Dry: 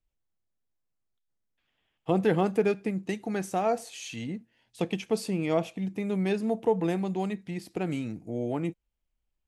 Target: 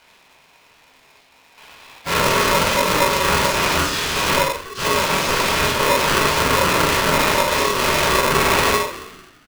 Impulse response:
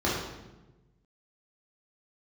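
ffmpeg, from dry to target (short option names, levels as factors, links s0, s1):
-filter_complex "[0:a]agate=range=0.0224:threshold=0.00631:ratio=3:detection=peak,bass=f=250:g=-15,treble=f=4000:g=-13,acrossover=split=230|3000[s0][s1][s2];[s1]acompressor=threshold=0.00562:ratio=3[s3];[s0][s3][s2]amix=inputs=3:normalize=0,acrossover=split=1000[s4][s5];[s4]alimiter=level_in=7.08:limit=0.0631:level=0:latency=1:release=46,volume=0.141[s6];[s5]acompressor=mode=upward:threshold=0.00158:ratio=2.5[s7];[s6][s7]amix=inputs=2:normalize=0,asplit=4[s8][s9][s10][s11];[s9]asetrate=35002,aresample=44100,atempo=1.25992,volume=0.158[s12];[s10]asetrate=37084,aresample=44100,atempo=1.18921,volume=0.316[s13];[s11]asetrate=55563,aresample=44100,atempo=0.793701,volume=0.631[s14];[s8][s12][s13][s14]amix=inputs=4:normalize=0,aeval=exprs='0.0282*sin(PI/2*7.94*val(0)/0.0282)':c=same,highpass=120,equalizer=f=150:t=q:w=4:g=8,equalizer=f=600:t=q:w=4:g=4,equalizer=f=1700:t=q:w=4:g=7,equalizer=f=2500:t=q:w=4:g=5,lowpass=f=9900:w=0.5412,lowpass=f=9900:w=1.3066,asplit=2[s15][s16];[s16]adelay=44,volume=0.562[s17];[s15][s17]amix=inputs=2:normalize=0,asplit=6[s18][s19][s20][s21][s22][s23];[s19]adelay=145,afreqshift=77,volume=0.188[s24];[s20]adelay=290,afreqshift=154,volume=0.101[s25];[s21]adelay=435,afreqshift=231,volume=0.055[s26];[s22]adelay=580,afreqshift=308,volume=0.0295[s27];[s23]adelay=725,afreqshift=385,volume=0.016[s28];[s18][s24][s25][s26][s27][s28]amix=inputs=6:normalize=0[s29];[1:a]atrim=start_sample=2205,atrim=end_sample=6174[s30];[s29][s30]afir=irnorm=-1:irlink=0,aeval=exprs='val(0)*sgn(sin(2*PI*760*n/s))':c=same"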